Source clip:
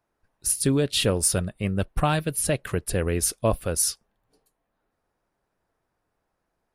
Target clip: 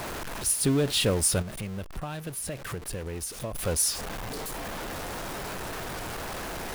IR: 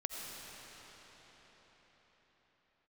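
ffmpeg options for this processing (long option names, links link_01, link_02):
-filter_complex "[0:a]aeval=exprs='val(0)+0.5*0.0562*sgn(val(0))':channel_layout=same,asplit=3[link_01][link_02][link_03];[link_01]afade=type=out:start_time=1.41:duration=0.02[link_04];[link_02]acompressor=threshold=-29dB:ratio=5,afade=type=in:start_time=1.41:duration=0.02,afade=type=out:start_time=3.54:duration=0.02[link_05];[link_03]afade=type=in:start_time=3.54:duration=0.02[link_06];[link_04][link_05][link_06]amix=inputs=3:normalize=0,volume=-4dB"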